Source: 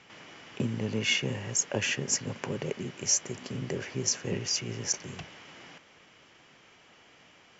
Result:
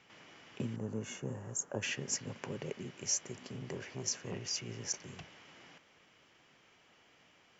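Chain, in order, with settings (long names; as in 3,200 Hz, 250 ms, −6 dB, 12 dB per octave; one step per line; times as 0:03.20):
0:00.76–0:01.83: flat-topped bell 3,200 Hz −16 dB
0:03.39–0:04.53: saturating transformer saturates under 920 Hz
level −7.5 dB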